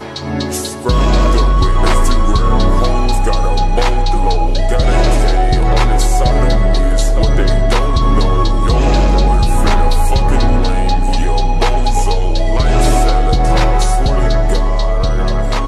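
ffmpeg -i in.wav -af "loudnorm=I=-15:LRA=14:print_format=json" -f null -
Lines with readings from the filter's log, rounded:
"input_i" : "-14.8",
"input_tp" : "-1.5",
"input_lra" : "0.8",
"input_thresh" : "-24.8",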